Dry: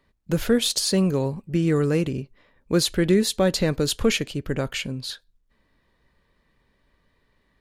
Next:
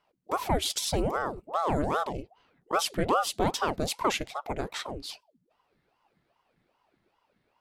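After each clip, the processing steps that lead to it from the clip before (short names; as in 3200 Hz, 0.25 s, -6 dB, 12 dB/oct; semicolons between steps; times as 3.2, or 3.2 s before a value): ring modulator with a swept carrier 580 Hz, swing 75%, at 2.5 Hz; gain -4 dB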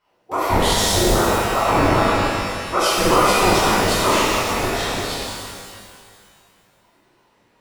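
shimmer reverb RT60 2.1 s, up +12 st, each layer -8 dB, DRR -11 dB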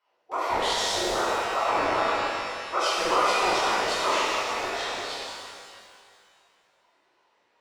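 three-band isolator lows -18 dB, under 390 Hz, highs -17 dB, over 7300 Hz; gain -6 dB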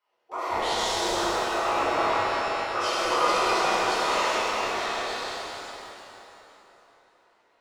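plate-style reverb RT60 3.8 s, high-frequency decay 0.7×, DRR -3 dB; gain -4.5 dB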